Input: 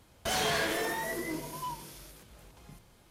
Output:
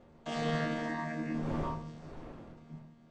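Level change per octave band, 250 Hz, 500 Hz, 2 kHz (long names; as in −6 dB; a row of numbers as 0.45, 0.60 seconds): +4.5, −3.0, −6.5 decibels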